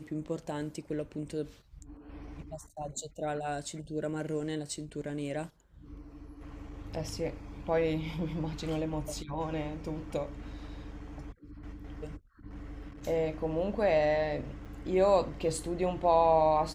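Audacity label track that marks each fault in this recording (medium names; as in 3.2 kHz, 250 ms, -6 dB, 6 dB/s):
14.650000	14.660000	dropout 6 ms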